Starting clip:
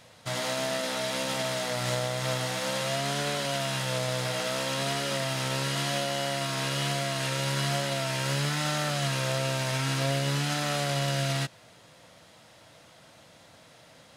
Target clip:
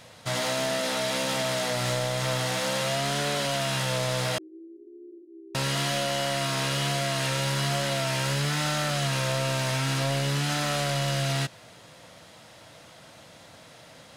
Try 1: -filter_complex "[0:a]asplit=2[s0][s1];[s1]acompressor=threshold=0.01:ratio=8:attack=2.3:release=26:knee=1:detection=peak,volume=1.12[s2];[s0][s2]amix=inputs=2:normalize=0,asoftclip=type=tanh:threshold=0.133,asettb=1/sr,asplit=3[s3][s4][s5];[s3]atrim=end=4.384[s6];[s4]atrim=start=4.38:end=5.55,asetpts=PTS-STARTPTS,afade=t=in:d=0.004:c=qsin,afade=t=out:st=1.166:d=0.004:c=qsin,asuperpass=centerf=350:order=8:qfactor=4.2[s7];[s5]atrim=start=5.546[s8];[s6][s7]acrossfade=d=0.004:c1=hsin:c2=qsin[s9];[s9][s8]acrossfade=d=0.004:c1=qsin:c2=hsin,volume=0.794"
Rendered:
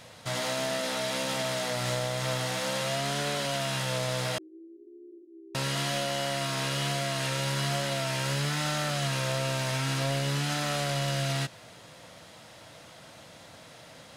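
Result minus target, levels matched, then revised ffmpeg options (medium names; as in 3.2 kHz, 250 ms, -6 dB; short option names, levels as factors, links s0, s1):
compression: peak gain reduction +10.5 dB
-filter_complex "[0:a]asplit=2[s0][s1];[s1]acompressor=threshold=0.0398:ratio=8:attack=2.3:release=26:knee=1:detection=peak,volume=1.12[s2];[s0][s2]amix=inputs=2:normalize=0,asoftclip=type=tanh:threshold=0.133,asettb=1/sr,asplit=3[s3][s4][s5];[s3]atrim=end=4.384[s6];[s4]atrim=start=4.38:end=5.55,asetpts=PTS-STARTPTS,afade=t=in:d=0.004:c=qsin,afade=t=out:st=1.166:d=0.004:c=qsin,asuperpass=centerf=350:order=8:qfactor=4.2[s7];[s5]atrim=start=5.546[s8];[s6][s7]acrossfade=d=0.004:c1=hsin:c2=qsin[s9];[s9][s8]acrossfade=d=0.004:c1=qsin:c2=hsin,volume=0.794"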